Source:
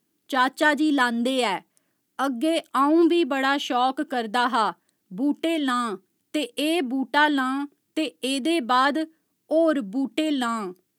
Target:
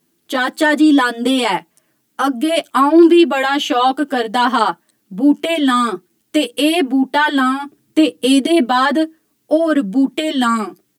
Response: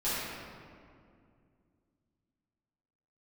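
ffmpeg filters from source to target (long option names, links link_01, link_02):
-filter_complex "[0:a]asplit=3[link_01][link_02][link_03];[link_01]afade=type=out:start_time=7.64:duration=0.02[link_04];[link_02]lowshelf=frequency=250:gain=11.5,afade=type=in:start_time=7.64:duration=0.02,afade=type=out:start_time=8.67:duration=0.02[link_05];[link_03]afade=type=in:start_time=8.67:duration=0.02[link_06];[link_04][link_05][link_06]amix=inputs=3:normalize=0,alimiter=level_in=12dB:limit=-1dB:release=50:level=0:latency=1,asplit=2[link_07][link_08];[link_08]adelay=8.7,afreqshift=-0.69[link_09];[link_07][link_09]amix=inputs=2:normalize=1"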